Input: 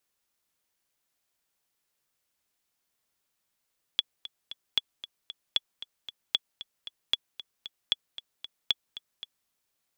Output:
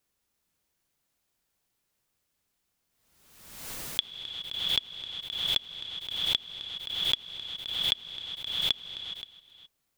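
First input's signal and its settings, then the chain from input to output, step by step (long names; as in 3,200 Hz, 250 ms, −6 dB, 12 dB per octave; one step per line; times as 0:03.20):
click track 229 BPM, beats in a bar 3, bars 7, 3,390 Hz, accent 15.5 dB −10 dBFS
low-shelf EQ 320 Hz +9 dB
reverb whose tail is shaped and stops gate 440 ms rising, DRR 7 dB
background raised ahead of every attack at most 50 dB per second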